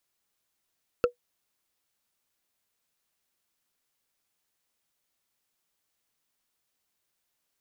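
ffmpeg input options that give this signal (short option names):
-f lavfi -i "aevalsrc='0.2*pow(10,-3*t/0.11)*sin(2*PI*487*t)+0.1*pow(10,-3*t/0.033)*sin(2*PI*1342.7*t)+0.0501*pow(10,-3*t/0.015)*sin(2*PI*2631.7*t)+0.0251*pow(10,-3*t/0.008)*sin(2*PI*4350.4*t)+0.0126*pow(10,-3*t/0.005)*sin(2*PI*6496.6*t)':d=0.45:s=44100"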